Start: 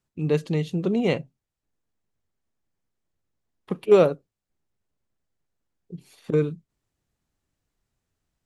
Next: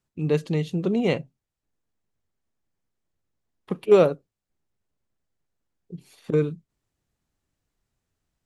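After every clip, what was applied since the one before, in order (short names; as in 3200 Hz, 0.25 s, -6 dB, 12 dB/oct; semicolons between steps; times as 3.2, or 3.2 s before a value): nothing audible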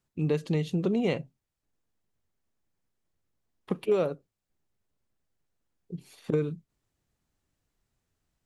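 compressor 5:1, threshold -23 dBFS, peak gain reduction 11.5 dB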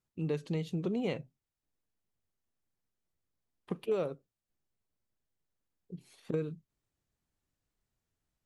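wow and flutter 70 cents; gain -6.5 dB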